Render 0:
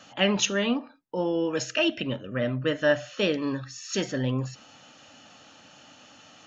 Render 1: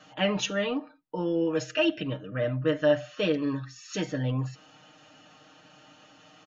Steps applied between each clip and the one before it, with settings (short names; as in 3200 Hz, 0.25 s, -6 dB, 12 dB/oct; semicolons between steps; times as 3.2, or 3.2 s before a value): high shelf 5300 Hz -11 dB; comb 6.5 ms, depth 82%; gain -3.5 dB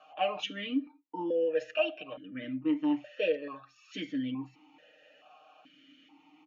low shelf 380 Hz -6.5 dB; vowel sequencer 2.3 Hz; gain +8 dB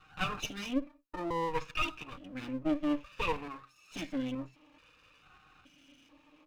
minimum comb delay 0.76 ms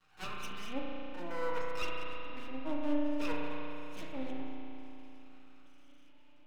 half-wave rectifier; spring tank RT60 3.4 s, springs 34 ms, chirp 50 ms, DRR -2 dB; gain -4.5 dB